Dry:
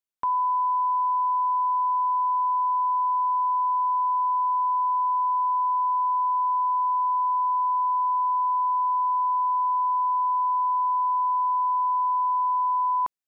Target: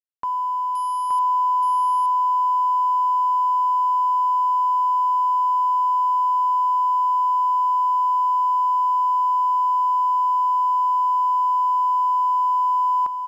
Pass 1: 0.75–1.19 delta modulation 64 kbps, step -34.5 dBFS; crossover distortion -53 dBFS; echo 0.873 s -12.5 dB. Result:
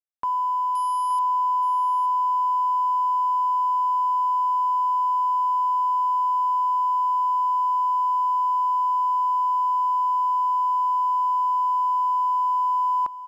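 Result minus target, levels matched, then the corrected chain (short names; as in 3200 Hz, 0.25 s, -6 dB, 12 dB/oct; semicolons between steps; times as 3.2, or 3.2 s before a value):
echo-to-direct -9 dB
0.75–1.19 delta modulation 64 kbps, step -34.5 dBFS; crossover distortion -53 dBFS; echo 0.873 s -3.5 dB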